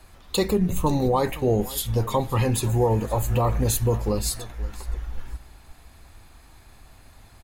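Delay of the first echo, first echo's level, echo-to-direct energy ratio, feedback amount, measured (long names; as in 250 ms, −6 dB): 522 ms, −19.0 dB, −19.0 dB, 22%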